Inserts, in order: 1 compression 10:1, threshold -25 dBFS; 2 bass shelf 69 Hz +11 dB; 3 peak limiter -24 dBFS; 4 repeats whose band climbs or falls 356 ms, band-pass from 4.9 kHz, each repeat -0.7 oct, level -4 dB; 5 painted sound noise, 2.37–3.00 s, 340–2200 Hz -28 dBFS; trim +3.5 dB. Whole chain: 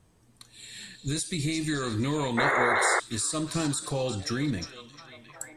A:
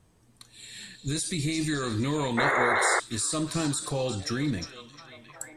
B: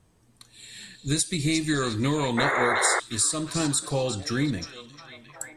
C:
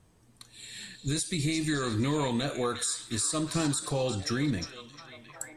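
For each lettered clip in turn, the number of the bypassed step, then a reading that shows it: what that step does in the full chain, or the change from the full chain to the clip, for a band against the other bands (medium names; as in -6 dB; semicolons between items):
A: 1, mean gain reduction 2.5 dB; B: 3, mean gain reduction 2.0 dB; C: 5, 2 kHz band -9.5 dB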